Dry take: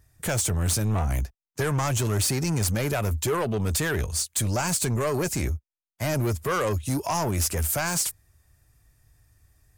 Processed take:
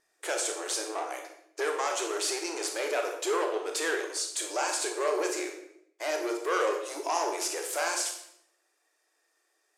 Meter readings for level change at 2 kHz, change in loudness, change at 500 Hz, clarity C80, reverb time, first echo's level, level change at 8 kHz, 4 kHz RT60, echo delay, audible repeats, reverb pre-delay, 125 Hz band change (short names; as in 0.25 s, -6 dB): -1.5 dB, -4.5 dB, -1.0 dB, 9.0 dB, 0.70 s, none, -5.0 dB, 0.60 s, none, none, 22 ms, under -40 dB